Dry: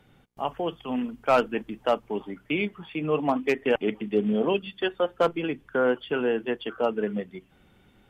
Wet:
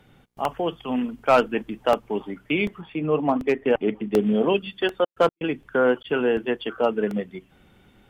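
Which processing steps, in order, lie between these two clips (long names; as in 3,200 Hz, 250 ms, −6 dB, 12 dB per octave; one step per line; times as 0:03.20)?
0:02.81–0:04.16: high-shelf EQ 2,000 Hz −9 dB
0:05.03–0:06.04: gate pattern "x.x.xxxx" 122 BPM −60 dB
regular buffer underruns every 0.74 s, samples 64, repeat, from 0:00.45
level +3.5 dB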